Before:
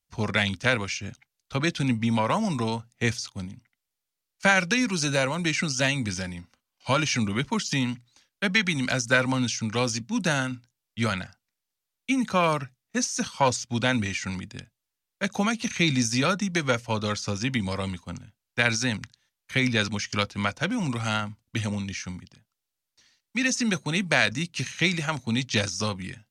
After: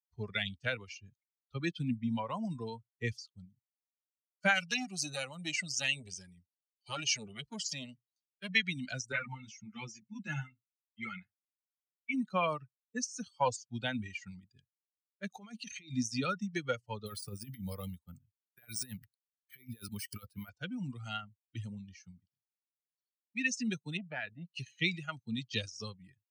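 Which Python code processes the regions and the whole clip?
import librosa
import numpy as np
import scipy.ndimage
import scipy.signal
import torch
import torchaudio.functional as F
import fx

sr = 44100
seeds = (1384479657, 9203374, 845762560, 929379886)

y = fx.chain(x, sr, fx.high_shelf(hz=4100.0, db=8.0),
    fx.transformer_sat(knee_hz=1900.0), at=(4.54, 8.5))
y = fx.chain(y, sr, fx.cabinet(low_hz=120.0, low_slope=12, high_hz=8200.0, hz=(140.0, 220.0, 470.0, 2100.0, 4400.0), db=(7, 7, -7, 9, -7)),
    fx.comb(ms=2.3, depth=0.35),
    fx.ensemble(), at=(9.12, 12.14))
y = fx.chain(y, sr, fx.peak_eq(hz=170.0, db=-3.5, octaves=1.0),
    fx.over_compress(threshold_db=-31.0, ratio=-1.0), at=(15.3, 15.93))
y = fx.chain(y, sr, fx.resample_bad(factor=3, down='none', up='hold'),
    fx.over_compress(threshold_db=-28.0, ratio=-0.5), at=(17.06, 20.49))
y = fx.chain(y, sr, fx.air_absorb(metres=350.0),
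    fx.transformer_sat(knee_hz=970.0), at=(23.97, 24.54))
y = fx.bin_expand(y, sr, power=2.0)
y = fx.dynamic_eq(y, sr, hz=2800.0, q=3.2, threshold_db=-49.0, ratio=4.0, max_db=6)
y = scipy.signal.sosfilt(scipy.signal.butter(2, 95.0, 'highpass', fs=sr, output='sos'), y)
y = F.gain(torch.from_numpy(y), -5.5).numpy()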